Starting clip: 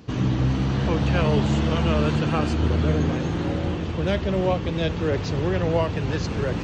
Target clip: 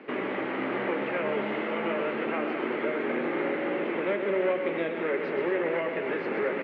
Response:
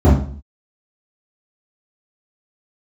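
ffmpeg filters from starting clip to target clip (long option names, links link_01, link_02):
-filter_complex "[0:a]equalizer=frequency=510:width_type=o:width=2.1:gain=12.5,acrossover=split=480|1300[link_01][link_02][link_03];[link_01]acompressor=threshold=-23dB:ratio=4[link_04];[link_02]acompressor=threshold=-30dB:ratio=4[link_05];[link_03]acompressor=threshold=-41dB:ratio=4[link_06];[link_04][link_05][link_06]amix=inputs=3:normalize=0,aeval=exprs='clip(val(0),-1,0.1)':channel_layout=same,highpass=frequency=290:width=0.5412,highpass=frequency=290:width=1.3066,equalizer=frequency=300:width_type=q:width=4:gain=-8,equalizer=frequency=480:width_type=q:width=4:gain=-9,equalizer=frequency=710:width_type=q:width=4:gain=-9,equalizer=frequency=1000:width_type=q:width=4:gain=-6,equalizer=frequency=2100:width_type=q:width=4:gain=10,lowpass=frequency=2600:width=0.5412,lowpass=frequency=2600:width=1.3066,asplit=2[link_07][link_08];[link_08]aecho=0:1:29.15|128.3|224.5:0.282|0.447|0.316[link_09];[link_07][link_09]amix=inputs=2:normalize=0,volume=1.5dB"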